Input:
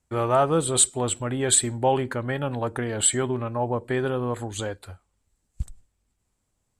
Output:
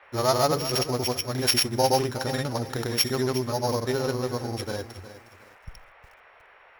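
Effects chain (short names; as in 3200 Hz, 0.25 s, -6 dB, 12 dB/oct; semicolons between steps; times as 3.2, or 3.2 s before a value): sample sorter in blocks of 8 samples; vibrato 0.34 Hz 9 cents; grains, pitch spread up and down by 0 st; band noise 450–2300 Hz -54 dBFS; lo-fi delay 0.361 s, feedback 35%, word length 8-bit, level -13 dB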